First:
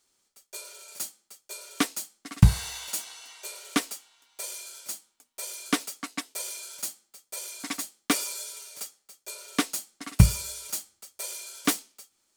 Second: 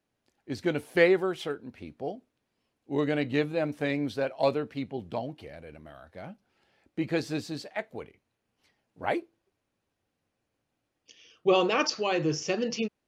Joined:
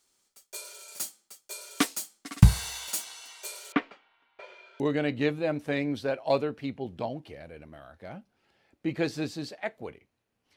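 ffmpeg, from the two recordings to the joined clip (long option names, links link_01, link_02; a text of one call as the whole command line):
ffmpeg -i cue0.wav -i cue1.wav -filter_complex "[0:a]asettb=1/sr,asplit=3[link_01][link_02][link_03];[link_01]atrim=end=3.724[link_04];[link_02]atrim=start=3.72:end=4.8,asetpts=PTS-STARTPTS,afade=type=in:duration=0.004:curve=qsin,afade=type=out:start_time=1.076:duration=0.004:curve=qsin,lowpass=frequency=2500:width=0.5412,lowpass=frequency=2500:width=1.3066[link_05];[link_03]atrim=start=4.796[link_06];[link_04][link_05]acrossfade=duration=0.004:curve1=hsin:curve2=qsin[link_07];[link_07][link_06]acrossfade=duration=0.004:curve1=qsin:curve2=hsin,apad=whole_dur=10.56,atrim=end=10.56,atrim=end=4.802[link_08];[1:a]atrim=start=2.928:end=8.69[link_09];[link_08][link_09]acrossfade=duration=0.004:curve1=hsin:curve2=hsin" out.wav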